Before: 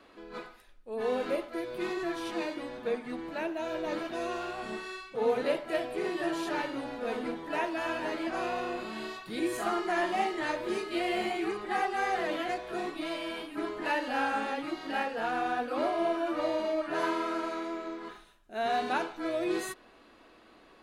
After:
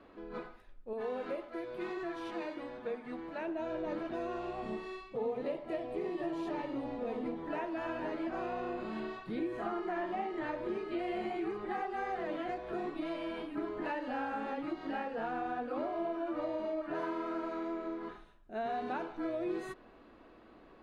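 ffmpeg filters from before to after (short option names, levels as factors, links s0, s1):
-filter_complex "[0:a]asettb=1/sr,asplit=3[s0][s1][s2];[s0]atrim=end=0.934[s3];[s1]atrim=start=0.93:end=3.48,asetpts=PTS-STARTPTS,afade=t=in:d=0.004:c=qsin,afade=t=out:st=2.546:d=0.004:c=qsin,lowshelf=f=450:g=-9[s4];[s2]atrim=start=3.476[s5];[s3][s4]acrossfade=d=0.004:c1=hsin:c2=qsin[s6];[s6][s5]acrossfade=d=0.004:c1=qsin:c2=hsin,asettb=1/sr,asplit=3[s7][s8][s9];[s7]atrim=end=4.394[s10];[s8]atrim=start=4.39:end=7.38,asetpts=PTS-STARTPTS,afade=t=in:d=0.004:c=qsin,afade=t=out:st=2.986:d=0.004:c=qsin,equalizer=f=1500:t=o:w=0.28:g=-11[s11];[s9]atrim=start=7.376[s12];[s10][s11]acrossfade=d=0.004:c1=hsin:c2=qsin[s13];[s13][s12]acrossfade=d=0.004:c1=qsin:c2=hsin,asettb=1/sr,asplit=3[s14][s15][s16];[s14]atrim=end=9.004[s17];[s15]atrim=start=9:end=10.99,asetpts=PTS-STARTPTS,afade=t=in:d=0.004:c=qsin,afade=t=out:st=1.986:d=0.004:c=qsin,acrossover=split=4200[s18][s19];[s19]acompressor=threshold=0.00158:ratio=4:attack=1:release=60[s20];[s18][s20]amix=inputs=2:normalize=0[s21];[s16]atrim=start=10.986[s22];[s17][s21]acrossfade=d=0.004:c1=hsin:c2=qsin[s23];[s23][s22]acrossfade=d=0.004:c1=qsin:c2=hsin,lowpass=f=1300:p=1,acompressor=threshold=0.0158:ratio=3,lowshelf=f=260:g=4.5"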